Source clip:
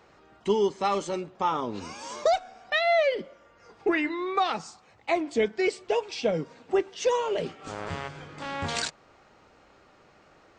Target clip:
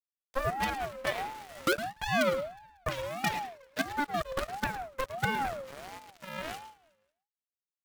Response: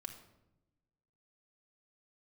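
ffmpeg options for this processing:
-filter_complex "[0:a]acrossover=split=300 2000:gain=0.0794 1 0.2[s0][s1][s2];[s0][s1][s2]amix=inputs=3:normalize=0,acrusher=bits=4:dc=4:mix=0:aa=0.000001,aeval=exprs='0.282*(cos(1*acos(clip(val(0)/0.282,-1,1)))-cos(1*PI/2))+0.0631*(cos(6*acos(clip(val(0)/0.282,-1,1)))-cos(6*PI/2))':c=same,aecho=1:1:246|492|738:0.075|0.0277|0.0103,asplit=2[s3][s4];[1:a]atrim=start_sample=2205,atrim=end_sample=3528,adelay=148[s5];[s4][s5]afir=irnorm=-1:irlink=0,volume=0.398[s6];[s3][s6]amix=inputs=2:normalize=0,asetrate=59535,aresample=44100,aeval=exprs='val(0)*sin(2*PI*700*n/s+700*0.25/1.5*sin(2*PI*1.5*n/s))':c=same,volume=0.562"

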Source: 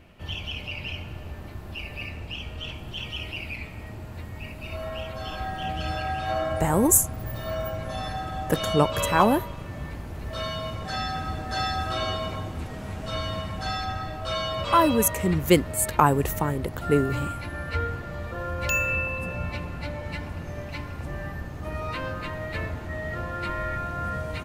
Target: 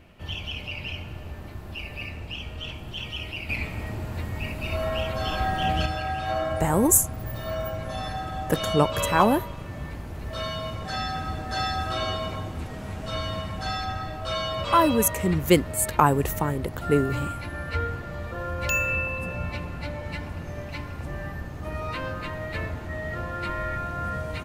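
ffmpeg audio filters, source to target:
-filter_complex "[0:a]asettb=1/sr,asplit=3[s0][s1][s2];[s0]atrim=end=3.494[s3];[s1]atrim=start=3.49:end=5.86,asetpts=PTS-STARTPTS,afade=t=in:d=0.004:c=qsin,afade=t=out:st=2.366:d=0.004:c=qsin,acontrast=54[s4];[s2]atrim=start=5.856[s5];[s3][s4]acrossfade=d=0.004:c1=hsin:c2=qsin[s6];[s6][s5]acrossfade=d=0.004:c1=qsin:c2=hsin"

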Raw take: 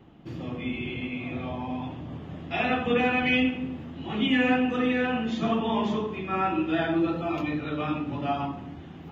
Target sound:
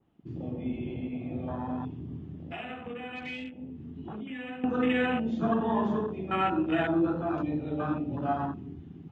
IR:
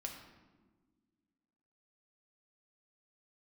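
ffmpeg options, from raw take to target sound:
-filter_complex "[0:a]afwtdn=0.0251,asettb=1/sr,asplit=3[s0][s1][s2];[s0]atrim=end=2.274[s3];[s1]atrim=start=2.27:end=4.64,asetpts=PTS-STARTPTS,afade=t=in:d=0.004:c=qsin,afade=t=out:st=2.366:d=0.004:c=qsin,acompressor=threshold=0.0158:ratio=8[s4];[s2]atrim=start=4.636[s5];[s3][s4]acrossfade=d=0.004:c1=hsin:c2=qsin[s6];[s6][s5]acrossfade=d=0.004:c1=qsin:c2=hsin,adynamicequalizer=threshold=0.00562:dfrequency=2200:dqfactor=0.7:tfrequency=2200:tqfactor=0.7:attack=5:release=100:ratio=0.375:range=1.5:mode=boostabove:tftype=highshelf,volume=0.891"

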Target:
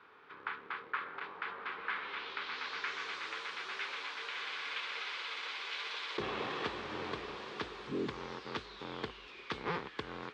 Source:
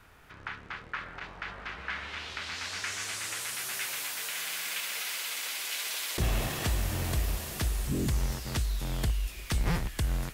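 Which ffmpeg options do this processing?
-af "highpass=350,equalizer=f=430:t=q:w=4:g=6,equalizer=f=650:t=q:w=4:g=-10,equalizer=f=1100:t=q:w=4:g=4,equalizer=f=1900:t=q:w=4:g=-4,equalizer=f=2800:t=q:w=4:g=-5,lowpass=f=3600:w=0.5412,lowpass=f=3600:w=1.3066"

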